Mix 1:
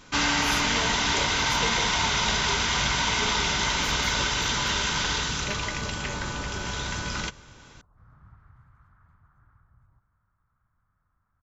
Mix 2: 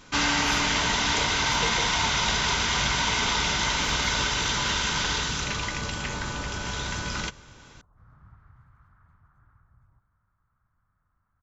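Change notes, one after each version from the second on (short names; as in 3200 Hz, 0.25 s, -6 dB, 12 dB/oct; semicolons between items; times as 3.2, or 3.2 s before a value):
speech -9.5 dB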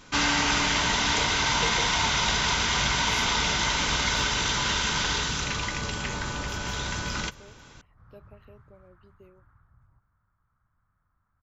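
speech: entry +2.65 s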